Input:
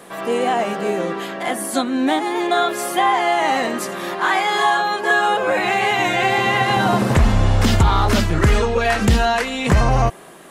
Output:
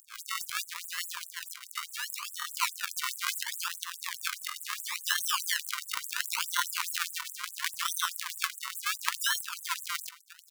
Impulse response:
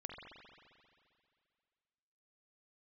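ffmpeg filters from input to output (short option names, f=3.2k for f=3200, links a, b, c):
-filter_complex "[0:a]asettb=1/sr,asplit=3[a][b][c];[a]atrim=end=1.534[d];[b]atrim=start=1.53:end=2.62,asetpts=PTS-STARTPTS,afade=t=in:d=0.004:c=qsin,afade=t=out:st=1.086:d=0.004:c=qsin,aeval=exprs='val(0)*sin(2*PI*1500*n/s)':c=same[e];[c]atrim=start=2.616[f];[d][e]acrossfade=d=0.004:c1=hsin:c2=qsin[g];[g][f]acrossfade=d=0.004:c1=qsin:c2=hsin,afftfilt=real='hypot(re,im)*cos(PI*b)':imag='0':win_size=1024:overlap=0.75,asplit=2[h][i];[i]aecho=0:1:104|208:0.0891|0.0232[j];[h][j]amix=inputs=2:normalize=0,acrusher=samples=36:mix=1:aa=0.000001:lfo=1:lforange=36:lforate=0.72,asplit=2[k][l];[l]acompressor=threshold=-29dB:ratio=10,volume=-1.5dB[m];[k][m]amix=inputs=2:normalize=0,afftfilt=real='re*gte(b*sr/1024,890*pow(7600/890,0.5+0.5*sin(2*PI*4.8*pts/sr)))':imag='im*gte(b*sr/1024,890*pow(7600/890,0.5+0.5*sin(2*PI*4.8*pts/sr)))':win_size=1024:overlap=0.75,volume=-3dB"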